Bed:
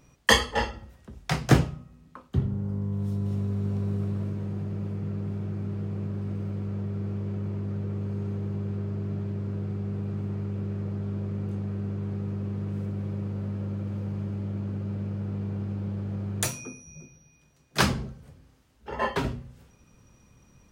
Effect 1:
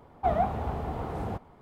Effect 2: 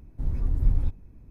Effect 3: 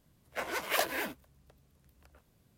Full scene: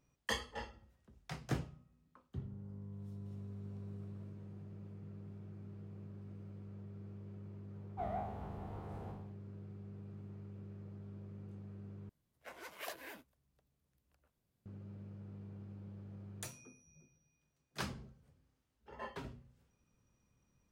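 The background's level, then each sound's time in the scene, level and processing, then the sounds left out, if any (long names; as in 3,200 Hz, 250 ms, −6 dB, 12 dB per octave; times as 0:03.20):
bed −18.5 dB
0:07.74: mix in 1 −17.5 dB + peak hold with a decay on every bin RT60 0.75 s
0:12.09: overwrite with 3 −15.5 dB
not used: 2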